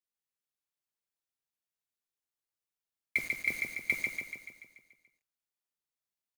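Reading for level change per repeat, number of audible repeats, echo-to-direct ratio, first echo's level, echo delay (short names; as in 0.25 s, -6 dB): -5.0 dB, 7, -2.0 dB, -3.5 dB, 0.144 s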